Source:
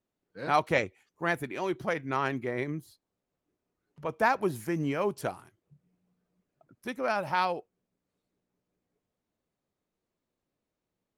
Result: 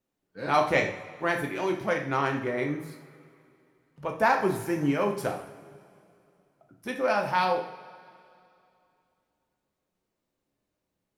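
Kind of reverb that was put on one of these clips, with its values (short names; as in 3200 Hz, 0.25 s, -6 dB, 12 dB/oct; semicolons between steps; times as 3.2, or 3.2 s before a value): two-slope reverb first 0.56 s, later 2.7 s, from -18 dB, DRR 1.5 dB; gain +1 dB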